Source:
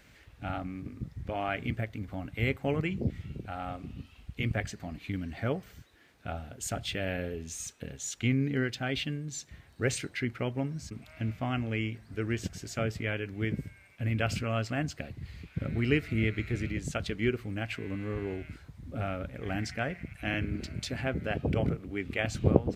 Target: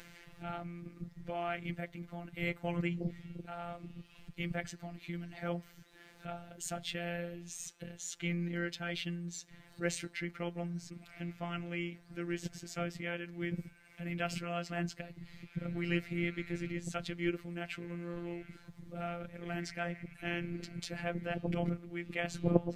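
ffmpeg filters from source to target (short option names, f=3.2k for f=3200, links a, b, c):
-af "afftfilt=real='hypot(re,im)*cos(PI*b)':imag='0':win_size=1024:overlap=0.75,acompressor=mode=upward:threshold=-42dB:ratio=2.5,volume=-1.5dB"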